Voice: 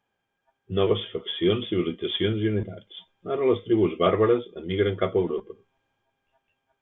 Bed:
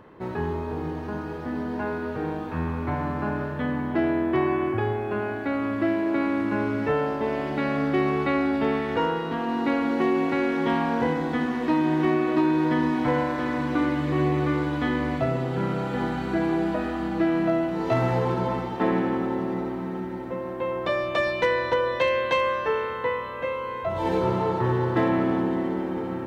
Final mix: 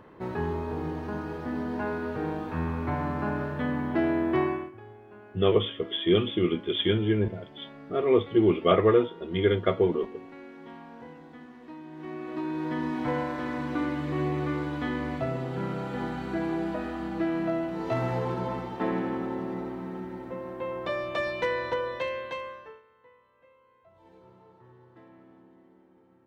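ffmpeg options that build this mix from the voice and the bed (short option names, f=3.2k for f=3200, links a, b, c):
-filter_complex "[0:a]adelay=4650,volume=0dB[a];[1:a]volume=14dB,afade=t=out:st=4.41:d=0.3:silence=0.105925,afade=t=in:st=11.92:d=1.17:silence=0.158489,afade=t=out:st=21.66:d=1.16:silence=0.0501187[b];[a][b]amix=inputs=2:normalize=0"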